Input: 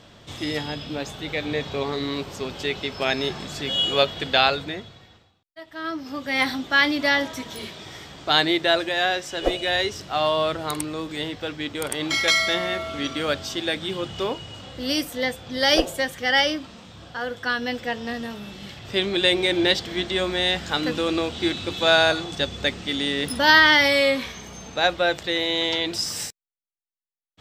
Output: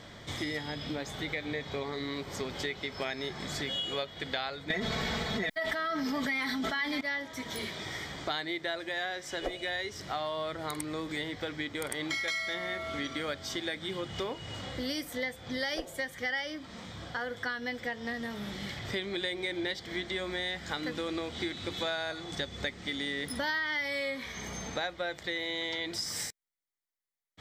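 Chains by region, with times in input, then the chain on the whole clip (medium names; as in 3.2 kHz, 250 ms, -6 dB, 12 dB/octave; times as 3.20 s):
4.70–7.01 s: chunks repeated in reverse 397 ms, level -13 dB + comb 4.6 ms, depth 71% + level flattener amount 100%
whole clip: peaking EQ 2 kHz +7 dB 0.4 oct; band-stop 2.7 kHz, Q 6.2; compression 5:1, threshold -33 dBFS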